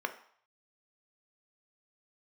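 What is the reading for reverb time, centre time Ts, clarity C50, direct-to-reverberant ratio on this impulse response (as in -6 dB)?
0.60 s, 8 ms, 13.0 dB, 7.0 dB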